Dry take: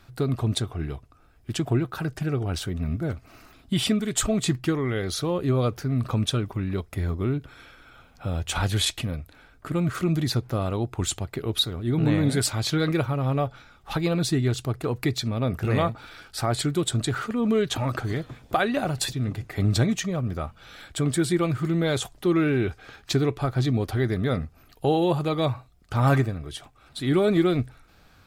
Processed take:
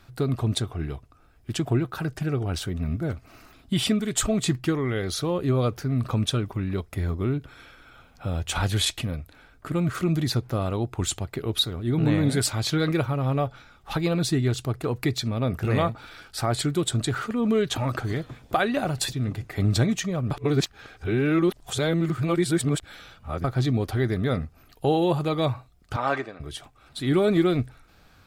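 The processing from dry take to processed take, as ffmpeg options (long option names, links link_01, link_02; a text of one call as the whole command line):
ffmpeg -i in.wav -filter_complex "[0:a]asettb=1/sr,asplit=3[link_01][link_02][link_03];[link_01]atrim=end=25.964[link_04];[link_02]atrim=start=25.96:end=26.4,asetpts=PTS-STARTPTS,afade=type=in:duration=0.004:curve=qsin,afade=type=out:start_time=0.436:duration=0.004:curve=qsin,highpass=440,lowpass=4400[link_05];[link_03]atrim=start=26.396[link_06];[link_04][link_05]acrossfade=duration=0.004:curve1=hsin:curve2=qsin[link_07];[link_07][link_06]acrossfade=duration=0.004:curve1=qsin:curve2=hsin,asplit=3[link_08][link_09][link_10];[link_08]atrim=end=20.312[link_11];[link_09]atrim=start=20.308:end=23.442,asetpts=PTS-STARTPTS,areverse[link_12];[link_10]atrim=start=23.438[link_13];[link_11][link_12]acrossfade=duration=0.004:curve1=hsin:curve2=hsin[link_14];[link_14][link_13]acrossfade=duration=0.004:curve1=hsin:curve2=hsin" out.wav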